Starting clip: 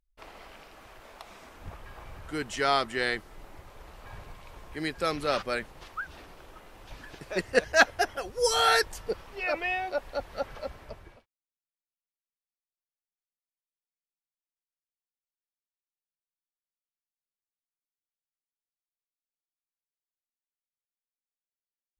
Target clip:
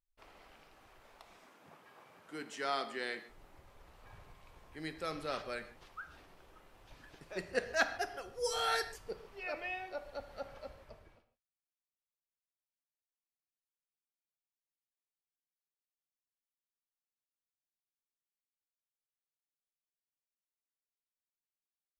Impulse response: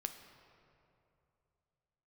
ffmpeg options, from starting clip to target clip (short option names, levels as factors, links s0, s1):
-filter_complex "[0:a]asettb=1/sr,asplit=3[s0][s1][s2];[s0]atrim=end=1.374[s3];[s1]atrim=start=1.37:end=3.29,asetpts=PTS-STARTPTS,afade=t=in:d=0.004:c=qsin,afade=t=out:st=1.916:d=0.004:c=qsin,highpass=f=170:w=0.5412,highpass=f=170:w=1.3066[s4];[s2]atrim=start=3.286[s5];[s3][s4]acrossfade=d=0.004:c1=hsin:c2=qsin[s6];[s6][s5]acrossfade=d=0.004:c1=qsin:c2=hsin[s7];[1:a]atrim=start_sample=2205,afade=t=out:st=0.21:d=0.01,atrim=end_sample=9702[s8];[s7][s8]afir=irnorm=-1:irlink=0,volume=0.355"